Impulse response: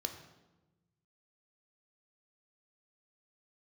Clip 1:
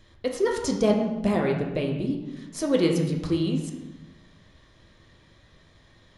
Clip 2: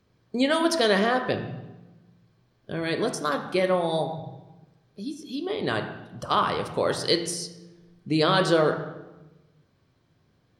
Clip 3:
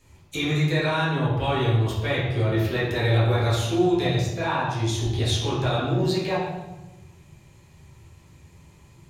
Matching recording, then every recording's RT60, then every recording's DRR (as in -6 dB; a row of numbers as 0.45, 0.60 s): 2; 1.1, 1.1, 1.1 s; 0.5, 5.0, -9.0 dB